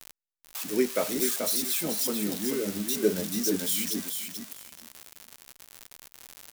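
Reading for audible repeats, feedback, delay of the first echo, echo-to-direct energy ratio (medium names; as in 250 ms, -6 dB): 2, 16%, 434 ms, -6.0 dB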